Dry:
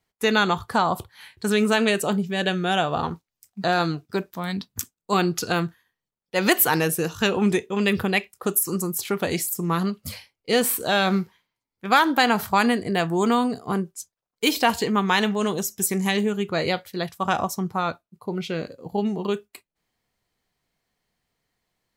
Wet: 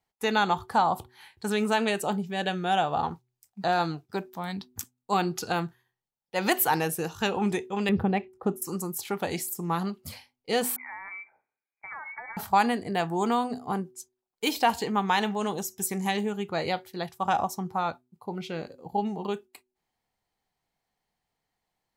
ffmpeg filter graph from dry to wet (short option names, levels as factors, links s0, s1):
-filter_complex "[0:a]asettb=1/sr,asplit=3[s0][s1][s2];[s0]atrim=end=7.894[s3];[s1]atrim=start=7.89:end=8.62,asetpts=PTS-STARTPTS,afade=t=in:d=0.004:c=qsin,afade=t=out:st=0.726:d=0.004:c=qsin,lowpass=f=1000:p=1,lowshelf=f=420:g=8[s4];[s2]atrim=start=8.616[s5];[s3][s4]acrossfade=d=0.004:c1=hsin:c2=qsin[s6];[s6][s5]acrossfade=d=0.004:c1=qsin:c2=hsin,asettb=1/sr,asplit=3[s7][s8][s9];[s7]atrim=end=10.764[s10];[s8]atrim=start=10.76:end=12.37,asetpts=PTS-STARTPTS,afade=t=in:d=0.004:c=qsin,afade=t=out:st=1.606:d=0.004:c=qsin,acompressor=threshold=0.0251:ratio=6:attack=3.2:release=140:knee=1:detection=peak,lowpass=f=2100:t=q:w=0.5098,lowpass=f=2100:t=q:w=0.6013,lowpass=f=2100:t=q:w=0.9,lowpass=f=2100:t=q:w=2.563,afreqshift=-2500[s11];[s9]atrim=start=12.366[s12];[s10][s11]acrossfade=d=0.004:c1=hsin:c2=qsin[s13];[s13][s12]acrossfade=d=0.004:c1=qsin:c2=hsin,equalizer=f=820:t=o:w=0.36:g=10,bandreject=f=124.6:t=h:w=4,bandreject=f=249.2:t=h:w=4,bandreject=f=373.8:t=h:w=4,volume=0.473"